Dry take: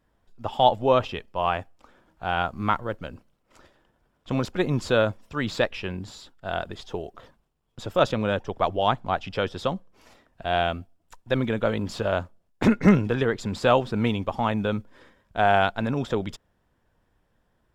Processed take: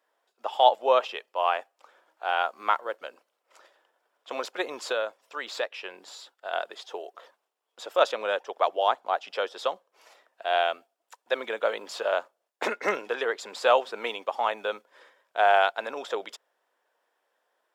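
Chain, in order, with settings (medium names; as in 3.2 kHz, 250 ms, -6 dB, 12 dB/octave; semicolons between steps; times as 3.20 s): high-pass 470 Hz 24 dB/octave; 4.92–6.53 s: compression 1.5:1, threshold -36 dBFS, peak gain reduction 7 dB; 8.77–9.61 s: dynamic bell 2.4 kHz, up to -4 dB, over -38 dBFS, Q 1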